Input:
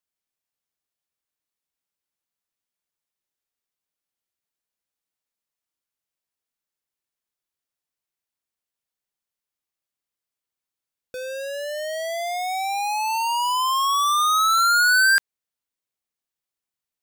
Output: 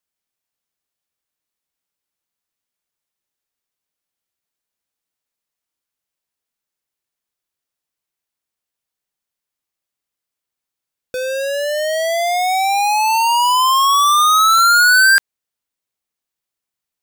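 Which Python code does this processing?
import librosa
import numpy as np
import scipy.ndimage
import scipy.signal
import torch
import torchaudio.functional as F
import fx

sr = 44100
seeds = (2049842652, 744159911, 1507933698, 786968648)

y = fx.leveller(x, sr, passes=1)
y = y * librosa.db_to_amplitude(6.0)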